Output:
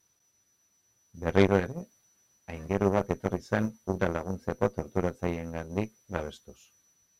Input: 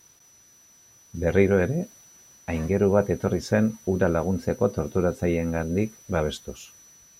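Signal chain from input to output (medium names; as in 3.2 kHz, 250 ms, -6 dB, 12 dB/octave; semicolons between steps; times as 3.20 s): flange 0.48 Hz, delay 9.6 ms, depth 1.4 ms, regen -49%; Chebyshev shaper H 4 -15 dB, 6 -22 dB, 7 -20 dB, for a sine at -8 dBFS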